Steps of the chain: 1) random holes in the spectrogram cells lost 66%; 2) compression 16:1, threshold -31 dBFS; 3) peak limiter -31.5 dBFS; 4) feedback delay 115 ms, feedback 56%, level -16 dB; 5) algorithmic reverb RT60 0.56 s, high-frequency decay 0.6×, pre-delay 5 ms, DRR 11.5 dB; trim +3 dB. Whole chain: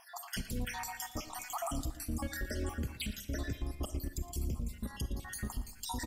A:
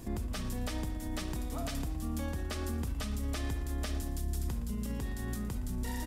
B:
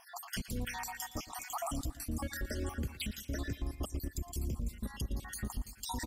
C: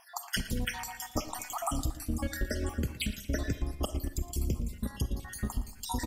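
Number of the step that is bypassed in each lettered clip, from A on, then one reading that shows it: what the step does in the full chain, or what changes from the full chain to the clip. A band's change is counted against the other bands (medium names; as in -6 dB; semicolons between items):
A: 1, 250 Hz band +5.5 dB; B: 5, echo-to-direct -9.5 dB to -14.5 dB; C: 3, mean gain reduction 2.0 dB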